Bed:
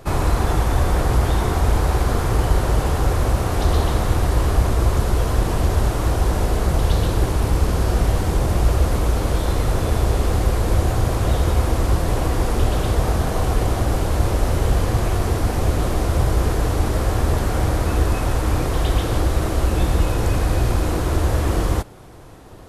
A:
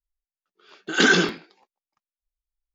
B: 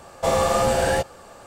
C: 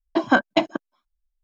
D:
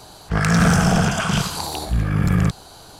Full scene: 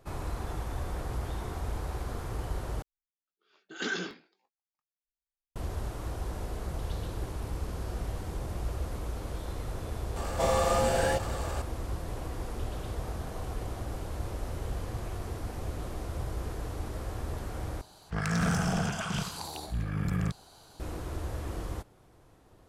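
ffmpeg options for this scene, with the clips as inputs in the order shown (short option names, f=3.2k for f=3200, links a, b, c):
-filter_complex "[0:a]volume=-17dB[a];[1:a]asplit=2[b][c];[c]adelay=21,volume=-11.5dB[d];[b][d]amix=inputs=2:normalize=0[e];[2:a]acompressor=mode=upward:threshold=-22dB:ratio=4:attack=0.15:release=23:knee=2.83:detection=peak[f];[a]asplit=3[g][h][i];[g]atrim=end=2.824[j];[e]atrim=end=2.74,asetpts=PTS-STARTPTS,volume=-16.5dB[k];[h]atrim=start=5.556:end=17.814[l];[4:a]atrim=end=2.99,asetpts=PTS-STARTPTS,volume=-12.5dB[m];[i]atrim=start=20.796[n];[f]atrim=end=1.46,asetpts=PTS-STARTPTS,volume=-6.5dB,afade=t=in:d=0.004:c=hsin,afade=t=out:st=1.456:d=0.004:c=hsin,adelay=10160[o];[j][k]acrossfade=d=0.004:c1=hsin:c2=hsin[p];[p][l]acrossfade=d=0.004:c1=hsin:c2=hsin[q];[q][m]acrossfade=d=0.004:c1=hsin:c2=hsin[r];[r][n]acrossfade=d=0.004:c1=hsin:c2=hsin[s];[s][o]amix=inputs=2:normalize=0"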